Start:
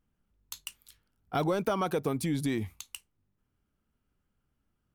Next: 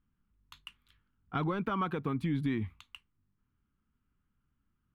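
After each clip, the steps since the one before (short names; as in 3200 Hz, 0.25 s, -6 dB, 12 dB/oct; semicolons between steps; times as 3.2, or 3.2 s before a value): EQ curve 250 Hz 0 dB, 650 Hz -13 dB, 1100 Hz +1 dB, 3300 Hz -5 dB, 5600 Hz -22 dB, 11000 Hz -25 dB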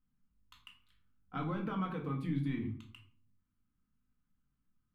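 shoebox room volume 460 m³, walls furnished, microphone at 2 m; gain -8.5 dB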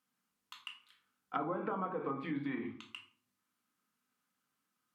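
HPF 480 Hz 12 dB/oct; treble ducked by the level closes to 830 Hz, closed at -39.5 dBFS; gain +9 dB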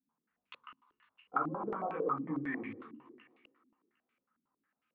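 thinning echo 0.252 s, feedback 47%, high-pass 190 Hz, level -12 dB; chorus voices 2, 1.3 Hz, delay 16 ms, depth 3.2 ms; stepped low-pass 11 Hz 270–2500 Hz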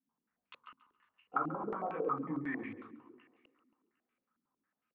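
feedback echo 0.138 s, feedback 31%, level -15 dB; mismatched tape noise reduction decoder only; gain -1 dB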